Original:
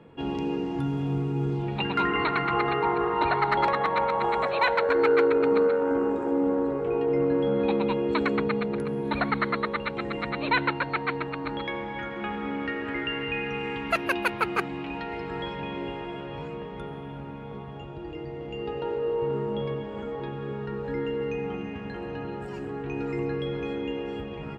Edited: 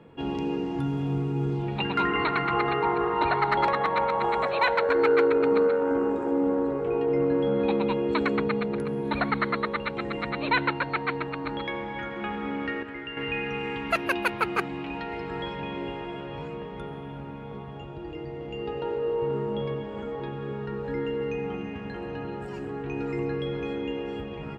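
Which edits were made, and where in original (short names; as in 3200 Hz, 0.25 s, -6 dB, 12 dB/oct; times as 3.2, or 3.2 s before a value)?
12.83–13.17 gain -7 dB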